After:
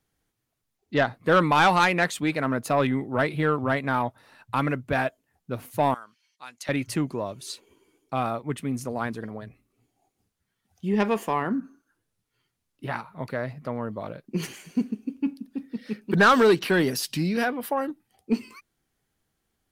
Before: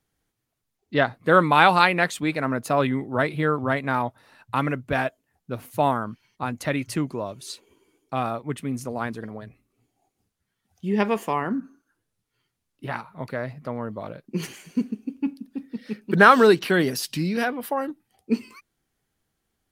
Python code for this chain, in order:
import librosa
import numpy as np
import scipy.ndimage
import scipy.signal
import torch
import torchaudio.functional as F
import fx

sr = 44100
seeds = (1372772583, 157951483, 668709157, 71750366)

y = fx.bandpass_q(x, sr, hz=5700.0, q=0.83, at=(5.94, 6.69))
y = 10.0 ** (-11.5 / 20.0) * np.tanh(y / 10.0 ** (-11.5 / 20.0))